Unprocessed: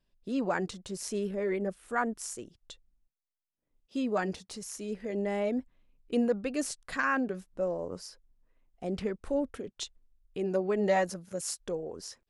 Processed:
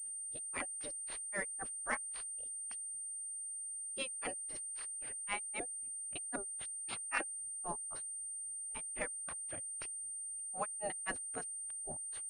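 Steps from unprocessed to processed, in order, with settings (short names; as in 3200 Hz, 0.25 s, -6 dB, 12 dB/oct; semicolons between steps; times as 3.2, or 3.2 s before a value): spectral gate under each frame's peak -15 dB weak; grains 0.141 s, grains 3.8/s; pulse-width modulation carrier 8800 Hz; gain +9 dB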